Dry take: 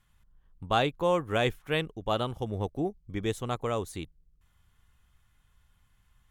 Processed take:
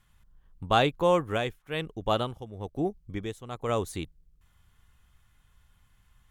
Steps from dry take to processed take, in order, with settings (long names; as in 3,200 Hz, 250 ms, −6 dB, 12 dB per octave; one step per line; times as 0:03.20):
0:01.14–0:03.69: amplitude tremolo 1.1 Hz, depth 76%
level +3 dB